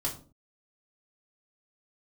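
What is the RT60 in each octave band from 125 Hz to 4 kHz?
0.50, 0.55, 0.45, 0.35, 0.25, 0.25 seconds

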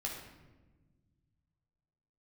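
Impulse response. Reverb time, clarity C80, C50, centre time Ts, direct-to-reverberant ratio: 1.2 s, 6.0 dB, 3.5 dB, 46 ms, −2.5 dB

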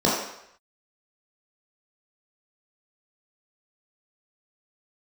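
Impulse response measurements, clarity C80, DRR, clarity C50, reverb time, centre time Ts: 5.0 dB, −6.5 dB, 1.5 dB, 0.75 s, 56 ms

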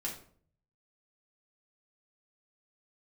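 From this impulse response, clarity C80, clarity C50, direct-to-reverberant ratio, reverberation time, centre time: 11.5 dB, 7.5 dB, −4.0 dB, 0.50 s, 24 ms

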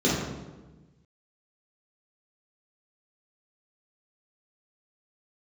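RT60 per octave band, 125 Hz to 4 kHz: 1.7, 1.5, 1.3, 1.1, 0.90, 0.80 seconds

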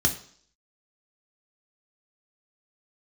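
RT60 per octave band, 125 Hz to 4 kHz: 0.50, 0.55, 0.55, 0.55, 0.55, 0.65 seconds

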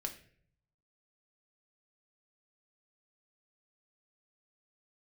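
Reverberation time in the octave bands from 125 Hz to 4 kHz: 1.1, 0.75, 0.65, 0.45, 0.55, 0.40 seconds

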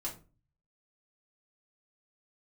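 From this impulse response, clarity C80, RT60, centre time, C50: 17.0 dB, 0.35 s, 18 ms, 10.5 dB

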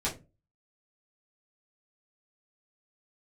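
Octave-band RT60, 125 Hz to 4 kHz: 0.45, 0.40, 0.35, 0.20, 0.20, 0.15 seconds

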